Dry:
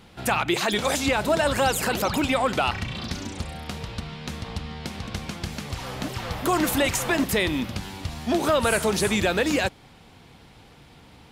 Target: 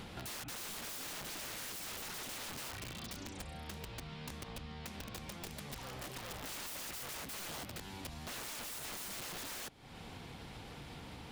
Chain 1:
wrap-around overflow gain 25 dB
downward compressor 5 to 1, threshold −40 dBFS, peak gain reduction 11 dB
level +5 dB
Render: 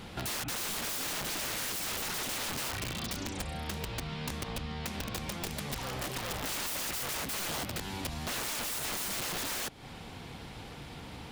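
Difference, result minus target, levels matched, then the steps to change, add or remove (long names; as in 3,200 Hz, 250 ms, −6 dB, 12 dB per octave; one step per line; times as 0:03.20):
downward compressor: peak gain reduction −9 dB
change: downward compressor 5 to 1, threshold −51 dBFS, peak gain reduction 19.5 dB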